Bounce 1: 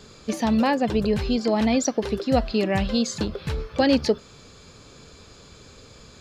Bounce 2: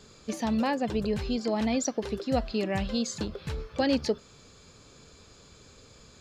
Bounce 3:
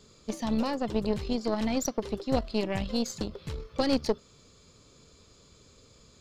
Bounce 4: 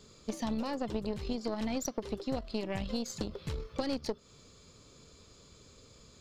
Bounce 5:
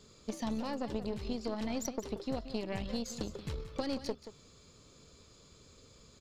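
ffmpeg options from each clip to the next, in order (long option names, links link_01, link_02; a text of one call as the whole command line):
ffmpeg -i in.wav -af "equalizer=frequency=7200:width=2:gain=3,volume=-6.5dB" out.wav
ffmpeg -i in.wav -af "equalizer=frequency=800:width_type=o:width=0.33:gain=-6,equalizer=frequency=1600:width_type=o:width=0.33:gain=-7,equalizer=frequency=2500:width_type=o:width=0.33:gain=-3,aeval=exprs='0.2*(cos(1*acos(clip(val(0)/0.2,-1,1)))-cos(1*PI/2))+0.0282*(cos(4*acos(clip(val(0)/0.2,-1,1)))-cos(4*PI/2))+0.00891*(cos(7*acos(clip(val(0)/0.2,-1,1)))-cos(7*PI/2))':channel_layout=same" out.wav
ffmpeg -i in.wav -af "acompressor=threshold=-30dB:ratio=6" out.wav
ffmpeg -i in.wav -af "aecho=1:1:179:0.237,volume=-2dB" out.wav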